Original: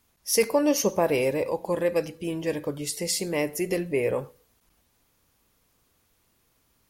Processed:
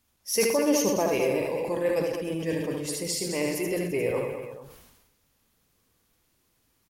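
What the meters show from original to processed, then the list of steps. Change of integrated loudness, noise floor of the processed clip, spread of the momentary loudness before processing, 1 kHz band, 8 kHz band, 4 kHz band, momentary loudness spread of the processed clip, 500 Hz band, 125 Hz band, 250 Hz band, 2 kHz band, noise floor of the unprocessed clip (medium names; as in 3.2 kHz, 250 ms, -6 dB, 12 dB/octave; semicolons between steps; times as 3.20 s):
-1.0 dB, -71 dBFS, 8 LU, -1.5 dB, -0.5 dB, -1.0 dB, 8 LU, -0.5 dB, -0.5 dB, 0.0 dB, -0.5 dB, -69 dBFS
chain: coarse spectral quantiser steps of 15 dB; multi-tap echo 74/122/209/289/338/433 ms -5/-12/-8.5/-16.5/-15.5/-15.5 dB; decay stretcher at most 47 dB/s; trim -3.5 dB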